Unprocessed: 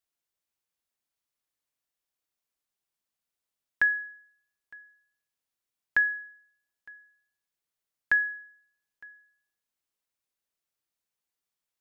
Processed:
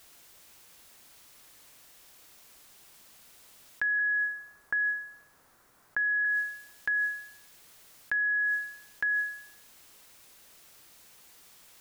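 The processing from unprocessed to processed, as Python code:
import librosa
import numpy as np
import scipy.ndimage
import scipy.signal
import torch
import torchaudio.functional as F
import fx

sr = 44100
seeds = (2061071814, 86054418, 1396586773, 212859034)

y = fx.high_shelf_res(x, sr, hz=2000.0, db=-9.5, q=1.5, at=(3.99, 6.25))
y = fx.env_flatten(y, sr, amount_pct=100)
y = y * librosa.db_to_amplitude(-8.0)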